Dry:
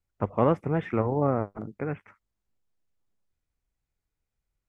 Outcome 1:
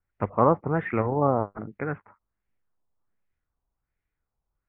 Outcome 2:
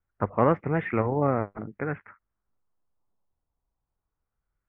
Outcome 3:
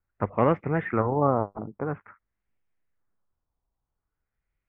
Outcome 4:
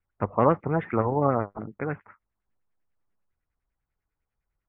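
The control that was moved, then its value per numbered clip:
LFO low-pass, rate: 1.3 Hz, 0.22 Hz, 0.48 Hz, 10 Hz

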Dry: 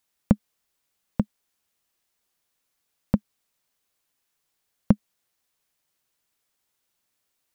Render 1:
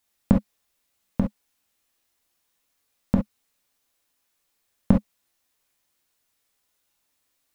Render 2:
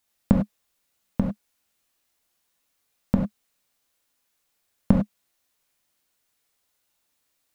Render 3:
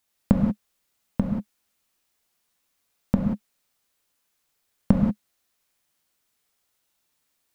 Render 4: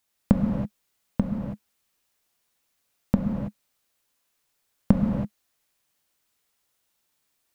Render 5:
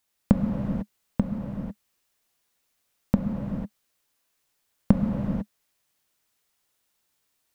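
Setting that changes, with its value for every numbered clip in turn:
gated-style reverb, gate: 80 ms, 120 ms, 210 ms, 350 ms, 520 ms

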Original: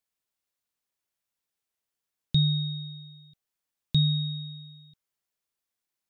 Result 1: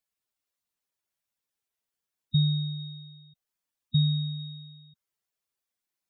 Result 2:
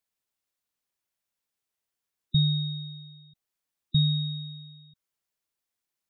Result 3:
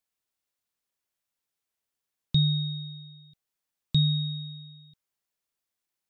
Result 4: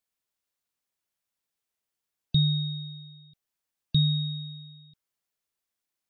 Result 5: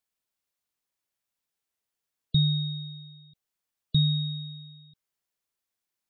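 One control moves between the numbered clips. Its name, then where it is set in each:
spectral gate, under each frame's peak: -10 dB, -20 dB, -60 dB, -45 dB, -35 dB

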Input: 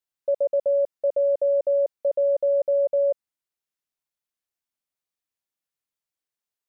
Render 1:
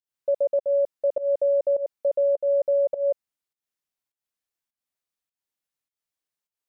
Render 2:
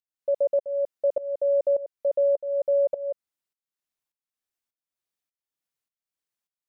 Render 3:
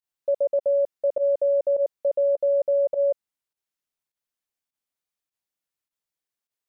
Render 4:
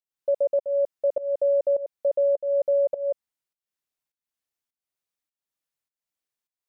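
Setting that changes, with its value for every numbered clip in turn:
volume shaper, release: 191 ms, 510 ms, 68 ms, 323 ms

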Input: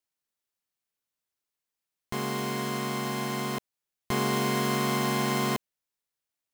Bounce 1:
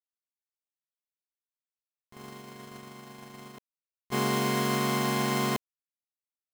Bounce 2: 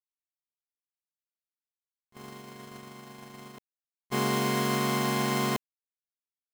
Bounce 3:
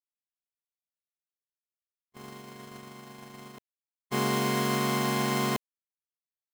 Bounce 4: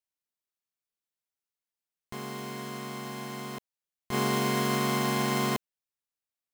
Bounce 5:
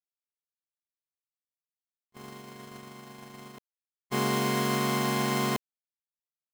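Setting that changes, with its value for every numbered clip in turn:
gate, range: -21 dB, -33 dB, -58 dB, -7 dB, -46 dB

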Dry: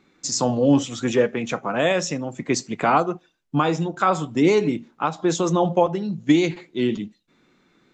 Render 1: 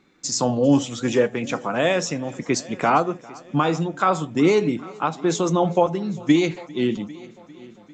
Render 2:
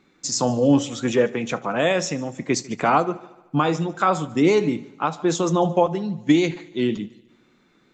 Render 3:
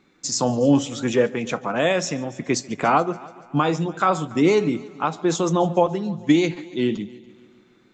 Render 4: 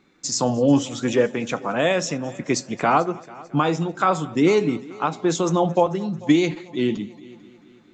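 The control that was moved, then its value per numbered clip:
multi-head delay, time: 399 ms, 74 ms, 143 ms, 221 ms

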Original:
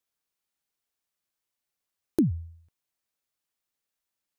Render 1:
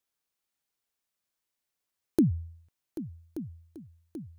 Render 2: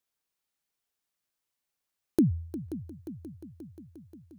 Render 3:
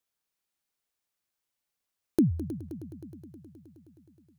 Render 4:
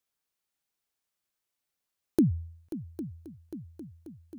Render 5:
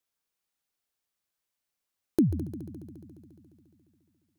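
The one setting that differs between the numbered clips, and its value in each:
multi-head delay, time: 393 ms, 177 ms, 105 ms, 268 ms, 70 ms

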